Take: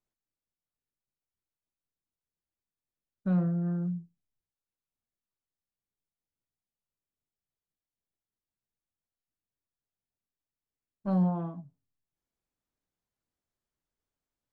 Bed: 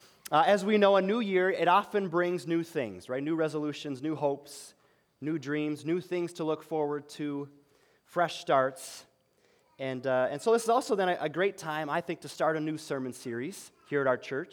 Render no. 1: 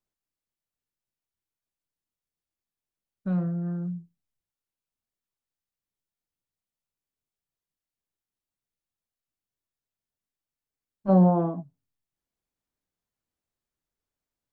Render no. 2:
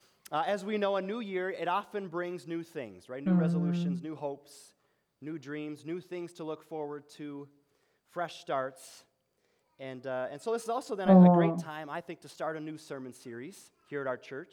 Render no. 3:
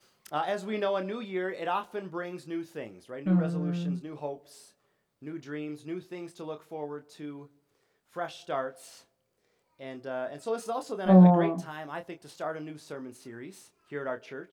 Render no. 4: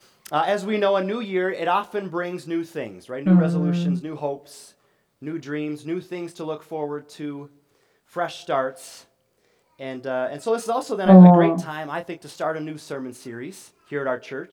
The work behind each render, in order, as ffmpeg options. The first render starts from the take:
-filter_complex "[0:a]asplit=3[s0][s1][s2];[s0]afade=t=out:st=11.08:d=0.02[s3];[s1]equalizer=f=460:w=0.49:g=15,afade=t=in:st=11.08:d=0.02,afade=t=out:st=11.62:d=0.02[s4];[s2]afade=t=in:st=11.62:d=0.02[s5];[s3][s4][s5]amix=inputs=3:normalize=0"
-filter_complex "[1:a]volume=0.422[s0];[0:a][s0]amix=inputs=2:normalize=0"
-filter_complex "[0:a]asplit=2[s0][s1];[s1]adelay=27,volume=0.398[s2];[s0][s2]amix=inputs=2:normalize=0"
-af "volume=2.82,alimiter=limit=0.891:level=0:latency=1"

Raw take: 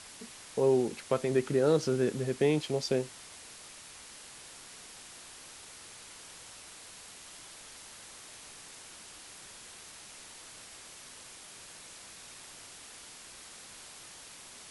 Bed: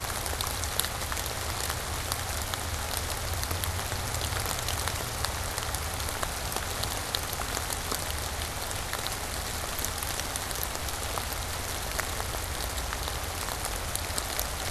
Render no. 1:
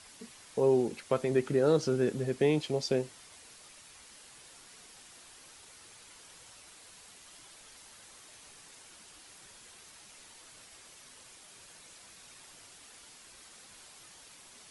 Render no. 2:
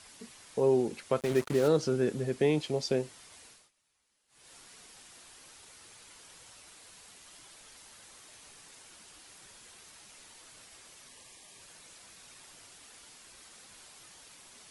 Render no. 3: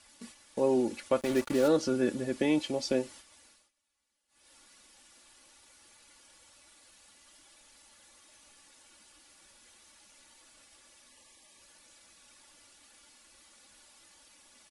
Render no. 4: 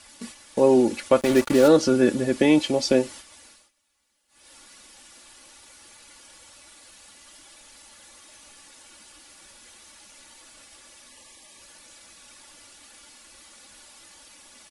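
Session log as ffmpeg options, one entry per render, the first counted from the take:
-af "afftdn=nr=6:nf=-50"
-filter_complex "[0:a]asplit=3[s0][s1][s2];[s0]afade=t=out:st=1.19:d=0.02[s3];[s1]acrusher=bits=5:mix=0:aa=0.5,afade=t=in:st=1.19:d=0.02,afade=t=out:st=1.67:d=0.02[s4];[s2]afade=t=in:st=1.67:d=0.02[s5];[s3][s4][s5]amix=inputs=3:normalize=0,asettb=1/sr,asplit=3[s6][s7][s8];[s6]atrim=end=11.084[s9];[s7]atrim=start=11.08:end=11.62,asetpts=PTS-STARTPTS,afade=t=in:d=0.004:c=qsin,afade=t=out:st=0.536:d=0.004:c=qsin,asuperstop=centerf=1400:order=20:qfactor=4.2[s10];[s8]atrim=start=11.616[s11];[s9][s10]acrossfade=d=0.004:c1=hsin:c2=qsin[s12];[s12][s11]acrossfade=d=0.004:c1=qsin:c2=hsin,asplit=3[s13][s14][s15];[s13]atrim=end=3.71,asetpts=PTS-STARTPTS,afade=t=out:st=3.45:d=0.26:silence=0.0707946[s16];[s14]atrim=start=3.71:end=4.28,asetpts=PTS-STARTPTS,volume=0.0708[s17];[s15]atrim=start=4.28,asetpts=PTS-STARTPTS,afade=t=in:d=0.26:silence=0.0707946[s18];[s16][s17][s18]concat=n=3:v=0:a=1"
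-af "aecho=1:1:3.5:0.66,agate=range=0.447:threshold=0.00355:ratio=16:detection=peak"
-af "volume=2.99"

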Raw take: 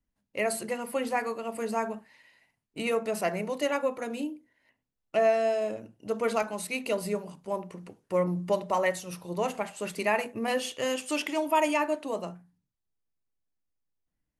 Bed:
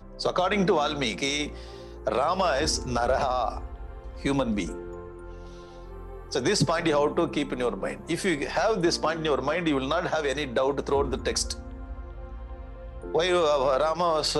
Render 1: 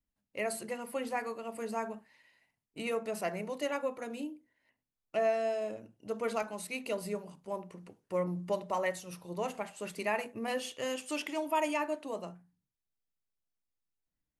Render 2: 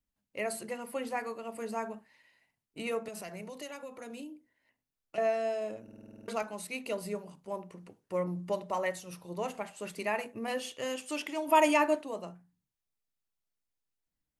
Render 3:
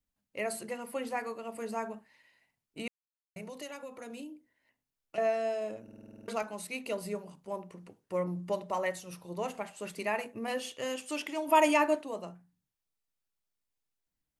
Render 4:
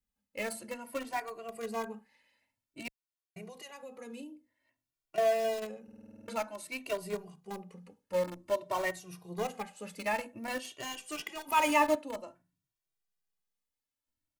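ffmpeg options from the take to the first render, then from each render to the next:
-af "volume=0.501"
-filter_complex "[0:a]asettb=1/sr,asplit=3[s0][s1][s2];[s0]atrim=end=3.084[s3];[s1]atrim=start=3.08:end=5.18,asetpts=PTS-STARTPTS,afade=t=in:d=0.004:c=qsin,afade=t=out:st=2.096:d=0.004:c=qsin,acrossover=split=150|3000[s4][s5][s6];[s5]acompressor=threshold=0.00891:ratio=6:attack=3.2:release=140:knee=2.83:detection=peak[s7];[s4][s7][s6]amix=inputs=3:normalize=0[s8];[s2]atrim=start=5.176[s9];[s3][s8]acrossfade=d=0.004:c1=hsin:c2=qsin[s10];[s10][s9]acrossfade=d=0.004:c1=qsin:c2=hsin,asplit=3[s11][s12][s13];[s11]afade=t=out:st=11.47:d=0.02[s14];[s12]acontrast=85,afade=t=in:st=11.47:d=0.02,afade=t=out:st=12.01:d=0.02[s15];[s13]afade=t=in:st=12.01:d=0.02[s16];[s14][s15][s16]amix=inputs=3:normalize=0,asplit=10[s17][s18][s19][s20][s21][s22][s23][s24][s25][s26];[s17]atrim=end=5.882[s27];[s18]atrim=start=5.828:end=5.882[s28];[s19]atrim=start=5.828:end=5.882[s29];[s20]atrim=start=5.828:end=5.882[s30];[s21]atrim=start=5.828:end=5.882[s31];[s22]atrim=start=5.828:end=5.882[s32];[s23]atrim=start=5.828:end=5.882[s33];[s24]atrim=start=5.828:end=5.882[s34];[s25]atrim=start=5.828:end=5.882[s35];[s26]atrim=start=6.278[s36];[s27][s28]acrossfade=d=0.004:c1=hsin:c2=hsin[s37];[s37][s29]acrossfade=d=0.004:c1=hsin:c2=hsin[s38];[s38][s30]acrossfade=d=0.004:c1=hsin:c2=hsin[s39];[s39][s31]acrossfade=d=0.004:c1=hsin:c2=hsin[s40];[s40][s32]acrossfade=d=0.004:c1=hsin:c2=hsin[s41];[s41][s33]acrossfade=d=0.004:c1=hsin:c2=hsin[s42];[s42][s34]acrossfade=d=0.004:c1=hsin:c2=hsin[s43];[s43][s35]acrossfade=d=0.004:c1=hsin:c2=hsin[s44];[s44][s36]acrossfade=d=0.004:c1=hsin:c2=hsin"
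-filter_complex "[0:a]asplit=3[s0][s1][s2];[s0]atrim=end=2.88,asetpts=PTS-STARTPTS,afade=t=out:st=2.876:d=0.004:c=hsin[s3];[s1]atrim=start=2.88:end=3.36,asetpts=PTS-STARTPTS,volume=0[s4];[s2]atrim=start=3.36,asetpts=PTS-STARTPTS,afade=t=in:d=0.004:c=hsin[s5];[s3][s4][s5]concat=n=3:v=0:a=1"
-filter_complex "[0:a]asplit=2[s0][s1];[s1]acrusher=bits=4:mix=0:aa=0.000001,volume=0.398[s2];[s0][s2]amix=inputs=2:normalize=0,asplit=2[s3][s4];[s4]adelay=2,afreqshift=0.52[s5];[s3][s5]amix=inputs=2:normalize=1"

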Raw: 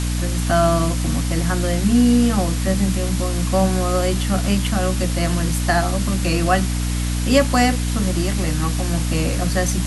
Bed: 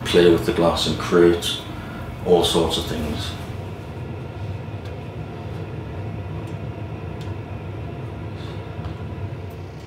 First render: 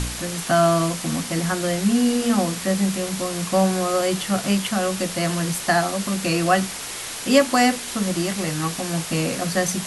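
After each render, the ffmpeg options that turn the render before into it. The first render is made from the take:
-af "bandreject=f=60:t=h:w=4,bandreject=f=120:t=h:w=4,bandreject=f=180:t=h:w=4,bandreject=f=240:t=h:w=4,bandreject=f=300:t=h:w=4"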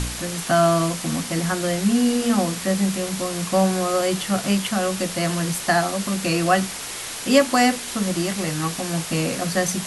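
-af anull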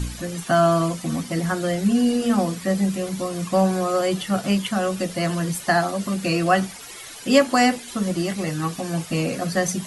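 -af "afftdn=nr=12:nf=-32"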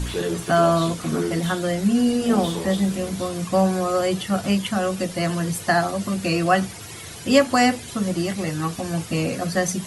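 -filter_complex "[1:a]volume=0.251[s0];[0:a][s0]amix=inputs=2:normalize=0"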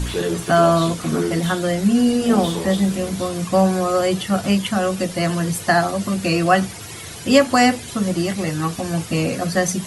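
-af "volume=1.41,alimiter=limit=0.794:level=0:latency=1"

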